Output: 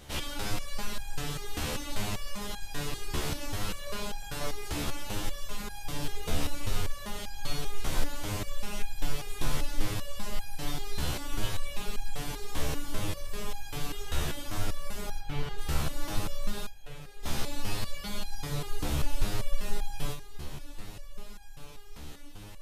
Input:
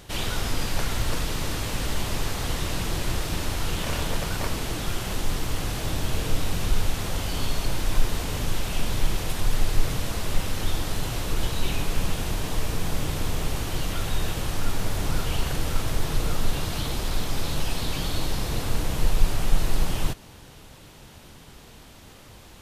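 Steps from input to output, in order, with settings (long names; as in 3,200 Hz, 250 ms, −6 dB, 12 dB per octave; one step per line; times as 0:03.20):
0:15.18–0:15.58: high-frequency loss of the air 190 metres
0:16.66–0:17.23: formant filter e
on a send: feedback delay with all-pass diffusion 1,466 ms, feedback 55%, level −14 dB
on the sum: step-sequenced resonator 5.1 Hz 73–810 Hz
level +5.5 dB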